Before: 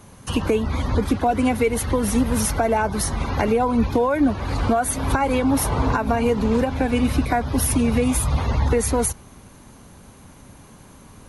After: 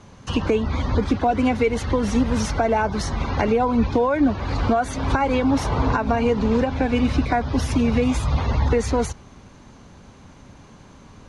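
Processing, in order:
low-pass filter 6,500 Hz 24 dB per octave

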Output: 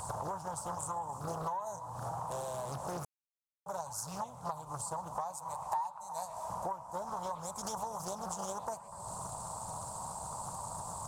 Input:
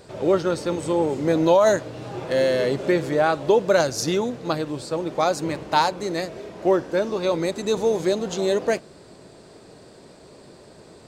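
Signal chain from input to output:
drawn EQ curve 110 Hz 0 dB, 190 Hz −7 dB, 370 Hz −28 dB, 960 Hz +13 dB, 1,800 Hz −25 dB, 4,100 Hz −14 dB, 8,200 Hz +11 dB
downward compressor 12 to 1, threshold −44 dBFS, peak gain reduction 36.5 dB
0:05.36–0:06.50: low shelf with overshoot 510 Hz −9 dB, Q 1.5
echo through a band-pass that steps 122 ms, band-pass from 2,500 Hz, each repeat −0.7 octaves, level −5 dB
0:03.05–0:03.66: silence
highs frequency-modulated by the lows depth 0.78 ms
level +7.5 dB

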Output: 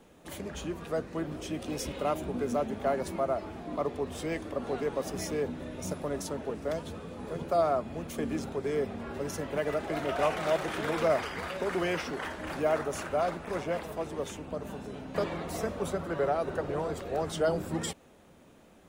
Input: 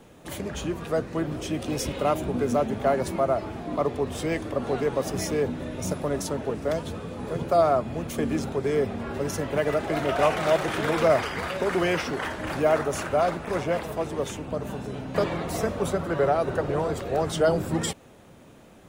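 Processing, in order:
parametric band 120 Hz −14 dB 0.21 octaves
level −6 dB

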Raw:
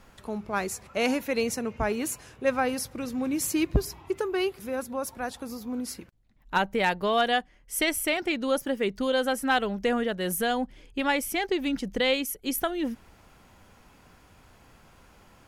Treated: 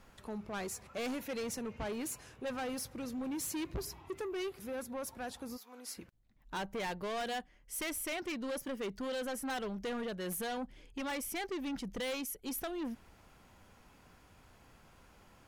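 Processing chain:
0:05.56–0:05.96: high-pass filter 1,400 Hz → 420 Hz 12 dB per octave
soft clipping −29 dBFS, distortion −7 dB
level −5.5 dB

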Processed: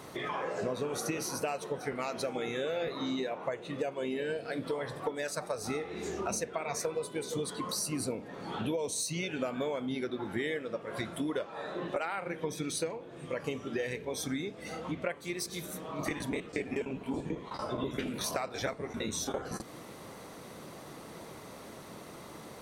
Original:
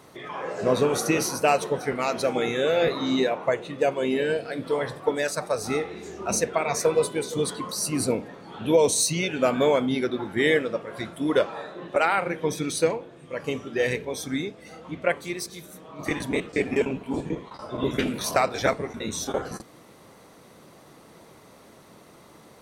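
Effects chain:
downward compressor 6 to 1, threshold −36 dBFS, peak gain reduction 20 dB
level +3.5 dB

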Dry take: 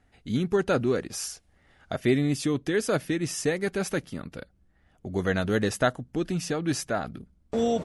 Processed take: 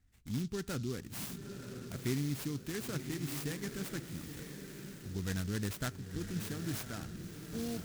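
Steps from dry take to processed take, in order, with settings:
running median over 3 samples
guitar amp tone stack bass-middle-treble 6-0-2
feedback delay with all-pass diffusion 972 ms, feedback 42%, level −7.5 dB
on a send at −22.5 dB: convolution reverb, pre-delay 5 ms
on the sum: short delay modulated by noise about 4,700 Hz, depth 0.075 ms
level +8 dB

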